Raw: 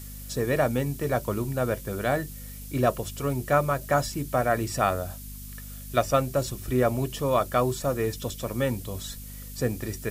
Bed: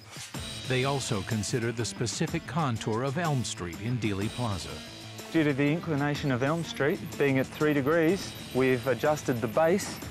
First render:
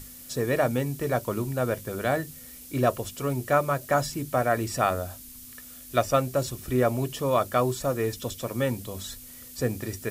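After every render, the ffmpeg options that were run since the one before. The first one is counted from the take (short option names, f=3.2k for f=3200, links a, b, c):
-af "bandreject=f=50:t=h:w=6,bandreject=f=100:t=h:w=6,bandreject=f=150:t=h:w=6,bandreject=f=200:t=h:w=6"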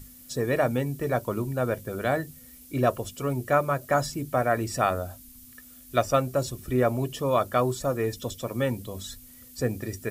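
-af "afftdn=nr=7:nf=-45"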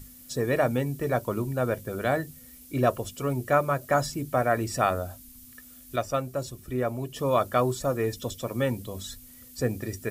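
-filter_complex "[0:a]asplit=3[a][b][c];[a]atrim=end=5.962[d];[b]atrim=start=5.958:end=7.162,asetpts=PTS-STARTPTS,volume=-5dB[e];[c]atrim=start=7.158[f];[d][e]acrossfade=d=0.004:c1=hsin:c2=hsin[g];[g][f]acrossfade=d=0.004:c1=hsin:c2=hsin"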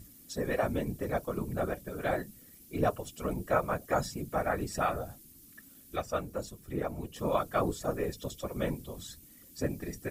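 -af "afftfilt=real='hypot(re,im)*cos(2*PI*random(0))':imag='hypot(re,im)*sin(2*PI*random(1))':win_size=512:overlap=0.75"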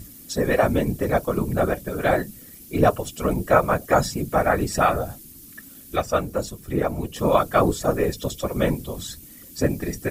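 -af "volume=11dB"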